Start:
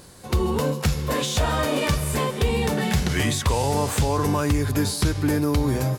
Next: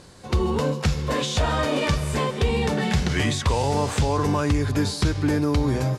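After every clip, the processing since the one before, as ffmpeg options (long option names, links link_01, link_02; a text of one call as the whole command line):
ffmpeg -i in.wav -af "lowpass=6900" out.wav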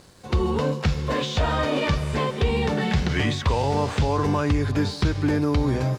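ffmpeg -i in.wav -filter_complex "[0:a]acrossover=split=5300[link_01][link_02];[link_02]acompressor=threshold=-51dB:ratio=4:attack=1:release=60[link_03];[link_01][link_03]amix=inputs=2:normalize=0,aeval=exprs='sgn(val(0))*max(abs(val(0))-0.00188,0)':channel_layout=same" out.wav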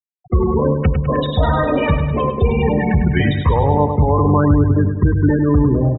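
ffmpeg -i in.wav -af "afftfilt=real='re*gte(hypot(re,im),0.112)':imag='im*gte(hypot(re,im),0.112)':win_size=1024:overlap=0.75,aecho=1:1:102|204|306|408|510|612|714:0.398|0.231|0.134|0.0777|0.0451|0.0261|0.0152,aexciter=amount=8.7:drive=5.7:freq=4900,volume=7dB" out.wav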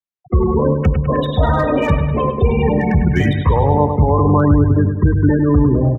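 ffmpeg -i in.wav -filter_complex "[0:a]lowpass=frequency=3400:poles=1,acrossover=split=180|590|1300[link_01][link_02][link_03][link_04];[link_04]volume=24dB,asoftclip=hard,volume=-24dB[link_05];[link_01][link_02][link_03][link_05]amix=inputs=4:normalize=0,volume=1dB" out.wav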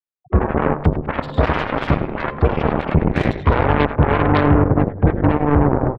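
ffmpeg -i in.wav -af "highshelf=frequency=2900:gain=-9.5,aeval=exprs='0.841*(cos(1*acos(clip(val(0)/0.841,-1,1)))-cos(1*PI/2))+0.211*(cos(7*acos(clip(val(0)/0.841,-1,1)))-cos(7*PI/2))':channel_layout=same,aecho=1:1:84:0.0944,volume=-2dB" out.wav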